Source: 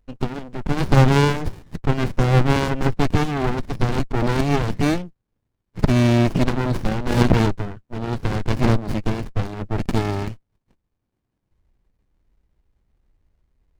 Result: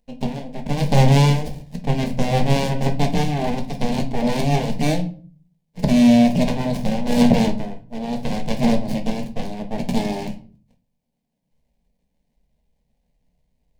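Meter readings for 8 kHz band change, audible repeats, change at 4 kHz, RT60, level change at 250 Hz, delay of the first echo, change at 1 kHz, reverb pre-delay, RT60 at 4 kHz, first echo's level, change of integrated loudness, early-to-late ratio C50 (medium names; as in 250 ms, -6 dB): +3.0 dB, no echo, +2.0 dB, 0.45 s, +3.5 dB, no echo, 0.0 dB, 5 ms, 0.30 s, no echo, +1.0 dB, 13.5 dB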